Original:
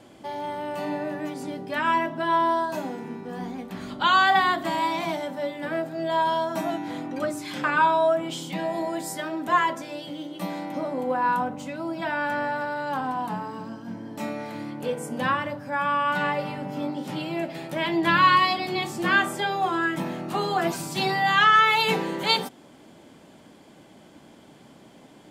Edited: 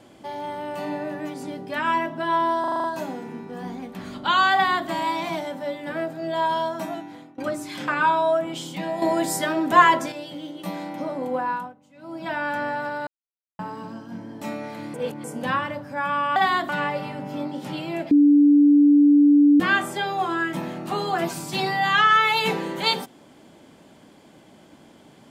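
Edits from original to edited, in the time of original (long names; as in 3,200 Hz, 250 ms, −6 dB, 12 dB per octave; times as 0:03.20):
0:02.60: stutter 0.04 s, 7 plays
0:04.30–0:04.63: duplicate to 0:16.12
0:06.41–0:07.14: fade out, to −22.5 dB
0:08.78–0:09.88: clip gain +7 dB
0:11.14–0:12.06: duck −21.5 dB, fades 0.37 s
0:12.83–0:13.35: silence
0:14.70–0:15.00: reverse
0:17.54–0:19.03: beep over 290 Hz −11 dBFS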